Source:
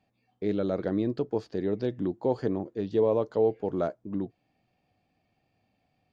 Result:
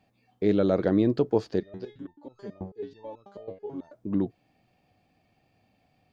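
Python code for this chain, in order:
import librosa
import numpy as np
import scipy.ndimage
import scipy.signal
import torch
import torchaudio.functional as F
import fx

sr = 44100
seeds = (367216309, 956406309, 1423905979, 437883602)

y = fx.resonator_held(x, sr, hz=9.2, low_hz=94.0, high_hz=1300.0, at=(1.59, 3.92), fade=0.02)
y = y * 10.0 ** (5.5 / 20.0)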